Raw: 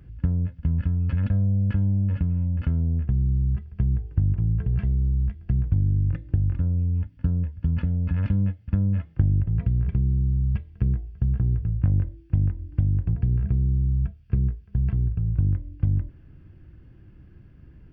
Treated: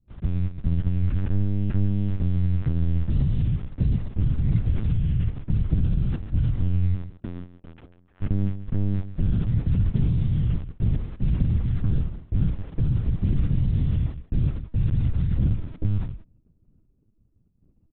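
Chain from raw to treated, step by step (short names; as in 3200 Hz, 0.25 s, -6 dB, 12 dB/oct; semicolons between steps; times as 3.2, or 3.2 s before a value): Wiener smoothing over 25 samples; 6.94–8.21 HPF 180 Hz -> 610 Hz 12 dB/oct; expander -37 dBFS; AGC gain up to 3 dB; in parallel at -6.5 dB: bit-crush 6-bit; on the sum: soft clip -11.5 dBFS, distortion -16 dB; on a send: echo 0.147 s -12.5 dB; on the sum: LPC vocoder at 8 kHz pitch kept; gain -3.5 dB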